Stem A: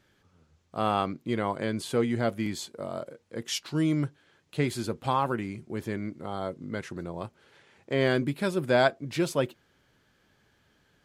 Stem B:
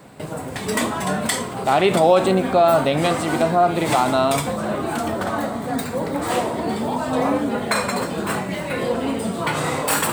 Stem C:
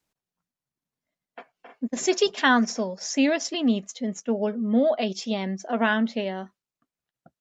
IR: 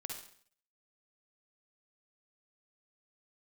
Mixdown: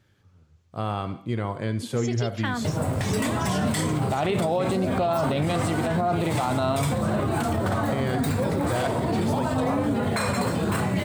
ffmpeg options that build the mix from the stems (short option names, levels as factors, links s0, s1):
-filter_complex "[0:a]volume=0.631,asplit=2[s0][s1];[s1]volume=0.631[s2];[1:a]adelay=2450,volume=1.12[s3];[2:a]volume=0.376[s4];[s0][s3]amix=inputs=2:normalize=0,equalizer=f=100:t=o:w=1.2:g=14,alimiter=limit=0.237:level=0:latency=1:release=35,volume=1[s5];[3:a]atrim=start_sample=2205[s6];[s2][s6]afir=irnorm=-1:irlink=0[s7];[s4][s5][s7]amix=inputs=3:normalize=0,alimiter=limit=0.158:level=0:latency=1:release=125"